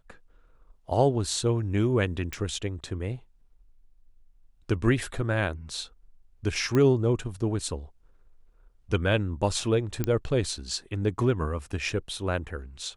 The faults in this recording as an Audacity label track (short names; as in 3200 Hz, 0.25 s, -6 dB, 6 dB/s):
2.330000	2.330000	pop
6.750000	6.750000	pop -14 dBFS
10.040000	10.040000	pop -13 dBFS